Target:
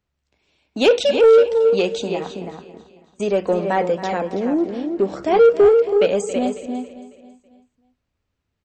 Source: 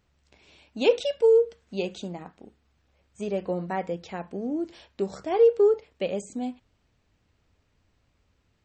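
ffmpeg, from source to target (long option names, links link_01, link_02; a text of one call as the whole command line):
ffmpeg -i in.wav -filter_complex "[0:a]agate=range=-20dB:threshold=-51dB:ratio=16:detection=peak,asettb=1/sr,asplit=3[link_01][link_02][link_03];[link_01]atrim=end=4.594[link_04];[link_02]atrim=start=4.59:end=5.23,asetpts=PTS-STARTPTS,afade=type=in:duration=0.004:curve=qsin,afade=type=out:start_time=0.636:duration=0.004:curve=qsin,lowpass=frequency=1700:poles=1[link_05];[link_03]atrim=start=5.226[link_06];[link_04][link_05]acrossfade=duration=0.004:curve1=hsin:curve2=qsin[link_07];[link_07][link_06]acrossfade=duration=0.004:curve1=qsin:curve2=hsin,asplit=2[link_08][link_09];[link_09]adelay=326.5,volume=-7dB,highshelf=frequency=4000:gain=-7.35[link_10];[link_08][link_10]amix=inputs=2:normalize=0,acrossover=split=220[link_11][link_12];[link_11]acompressor=threshold=-48dB:ratio=6[link_13];[link_13][link_12]amix=inputs=2:normalize=0,apsyclip=13dB,asplit=2[link_14][link_15];[link_15]aecho=0:1:274|548|822|1096:0.158|0.0745|0.035|0.0165[link_16];[link_14][link_16]amix=inputs=2:normalize=0,acontrast=34,volume=-7dB" out.wav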